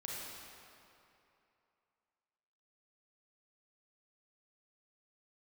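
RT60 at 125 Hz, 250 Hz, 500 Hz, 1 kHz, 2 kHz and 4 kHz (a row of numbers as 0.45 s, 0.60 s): 2.5 s, 2.6 s, 2.8 s, 2.9 s, 2.5 s, 2.0 s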